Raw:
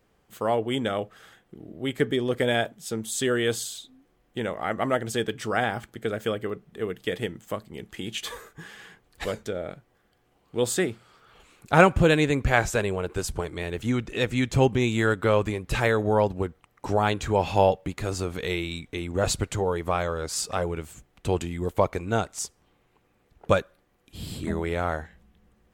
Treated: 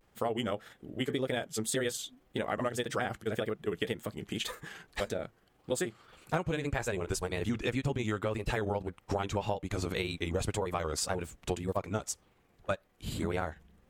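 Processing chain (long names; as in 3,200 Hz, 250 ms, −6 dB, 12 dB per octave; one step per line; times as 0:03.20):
pitch vibrato 0.98 Hz 90 cents
time stretch by overlap-add 0.54×, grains 89 ms
downward compressor 12 to 1, threshold −28 dBFS, peak gain reduction 16.5 dB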